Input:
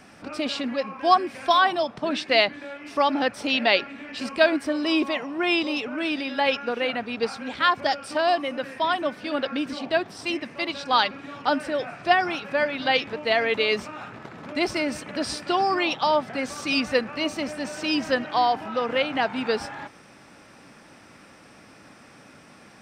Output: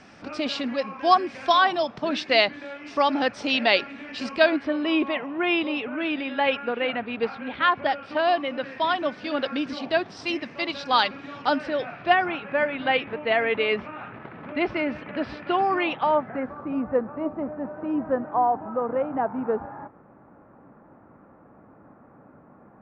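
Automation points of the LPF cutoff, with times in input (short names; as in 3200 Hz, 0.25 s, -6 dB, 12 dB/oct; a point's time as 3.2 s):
LPF 24 dB/oct
4.28 s 6500 Hz
4.77 s 3200 Hz
7.91 s 3200 Hz
9.15 s 5800 Hz
11.48 s 5800 Hz
12.34 s 2800 Hz
15.91 s 2800 Hz
16.69 s 1200 Hz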